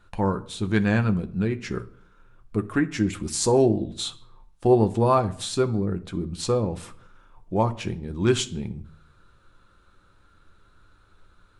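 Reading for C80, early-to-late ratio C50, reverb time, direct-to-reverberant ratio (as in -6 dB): 22.0 dB, 17.5 dB, 0.60 s, 7.5 dB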